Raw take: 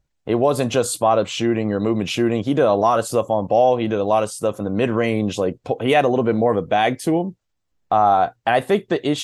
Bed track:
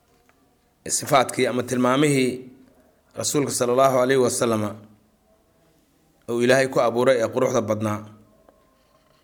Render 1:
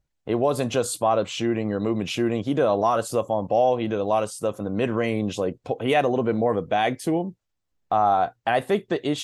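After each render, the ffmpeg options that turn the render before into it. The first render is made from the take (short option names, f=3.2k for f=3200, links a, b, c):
-af "volume=-4.5dB"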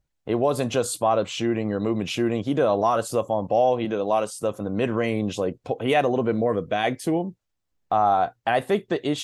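-filter_complex "[0:a]asettb=1/sr,asplit=3[a][b][c];[a]atrim=end=3.854[d];[b]atrim=start=3.85:end=4.43,asetpts=PTS-STARTPTS,afade=t=in:d=0.004:c=qsin,afade=t=out:st=0.576:d=0.004:c=qsin,highpass=150[e];[c]atrim=start=4.426[f];[d][e]acrossfade=d=0.004:c1=hsin:c2=qsin[g];[g][f]acrossfade=d=0.004:c1=qsin:c2=hsin,asettb=1/sr,asplit=3[h][i][j];[h]atrim=end=6.324[k];[i]atrim=start=6.32:end=6.84,asetpts=PTS-STARTPTS,afade=t=in:d=0.004:c=qsin,afade=t=out:st=0.516:d=0.004:c=qsin,equalizer=f=830:w=7:g=-13.5[l];[j]atrim=start=6.836[m];[k][l]acrossfade=d=0.004:c1=hsin:c2=qsin[n];[n][m]acrossfade=d=0.004:c1=qsin:c2=hsin"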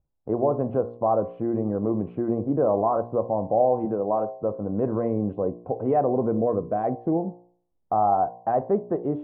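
-af "lowpass=f=1k:w=0.5412,lowpass=f=1k:w=1.3066,bandreject=f=59.13:t=h:w=4,bandreject=f=118.26:t=h:w=4,bandreject=f=177.39:t=h:w=4,bandreject=f=236.52:t=h:w=4,bandreject=f=295.65:t=h:w=4,bandreject=f=354.78:t=h:w=4,bandreject=f=413.91:t=h:w=4,bandreject=f=473.04:t=h:w=4,bandreject=f=532.17:t=h:w=4,bandreject=f=591.3:t=h:w=4,bandreject=f=650.43:t=h:w=4,bandreject=f=709.56:t=h:w=4,bandreject=f=768.69:t=h:w=4,bandreject=f=827.82:t=h:w=4,bandreject=f=886.95:t=h:w=4,bandreject=f=946.08:t=h:w=4,bandreject=f=1.00521k:t=h:w=4,bandreject=f=1.06434k:t=h:w=4,bandreject=f=1.12347k:t=h:w=4"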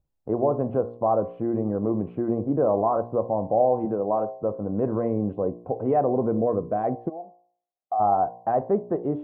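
-filter_complex "[0:a]asplit=3[a][b][c];[a]afade=t=out:st=7.08:d=0.02[d];[b]asplit=3[e][f][g];[e]bandpass=f=730:t=q:w=8,volume=0dB[h];[f]bandpass=f=1.09k:t=q:w=8,volume=-6dB[i];[g]bandpass=f=2.44k:t=q:w=8,volume=-9dB[j];[h][i][j]amix=inputs=3:normalize=0,afade=t=in:st=7.08:d=0.02,afade=t=out:st=7.99:d=0.02[k];[c]afade=t=in:st=7.99:d=0.02[l];[d][k][l]amix=inputs=3:normalize=0"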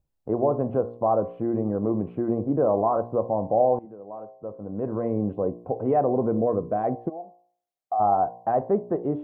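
-filter_complex "[0:a]asplit=2[a][b];[a]atrim=end=3.79,asetpts=PTS-STARTPTS,afade=t=out:st=3.786:d=0.004:c=hsin:silence=0.141254[c];[b]atrim=start=3.79,asetpts=PTS-STARTPTS,afade=t=in:d=1.4:c=qua:silence=0.141254[d];[c][d]concat=n=2:v=0:a=1"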